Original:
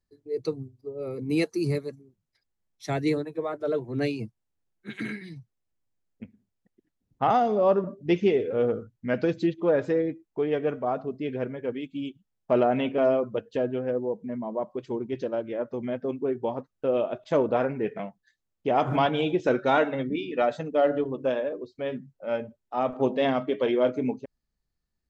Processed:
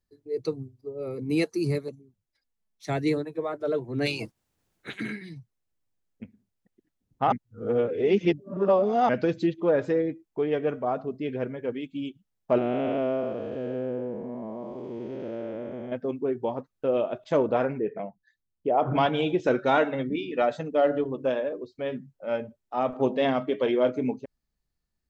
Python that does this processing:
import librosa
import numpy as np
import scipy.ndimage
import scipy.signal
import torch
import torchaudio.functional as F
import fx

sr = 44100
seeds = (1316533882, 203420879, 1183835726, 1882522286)

y = fx.env_flanger(x, sr, rest_ms=4.9, full_db=-39.0, at=(1.88, 2.87))
y = fx.spec_clip(y, sr, under_db=21, at=(4.05, 4.94), fade=0.02)
y = fx.spec_blur(y, sr, span_ms=409.0, at=(12.58, 15.92))
y = fx.envelope_sharpen(y, sr, power=1.5, at=(17.78, 18.95), fade=0.02)
y = fx.edit(y, sr, fx.reverse_span(start_s=7.32, length_s=1.77), tone=tone)